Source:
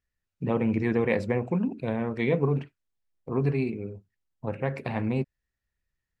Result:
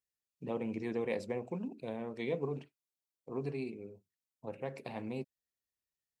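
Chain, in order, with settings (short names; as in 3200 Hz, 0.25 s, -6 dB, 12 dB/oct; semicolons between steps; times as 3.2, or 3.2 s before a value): HPF 770 Hz 6 dB/oct; bell 1600 Hz -13.5 dB 1.8 oct; gain -1 dB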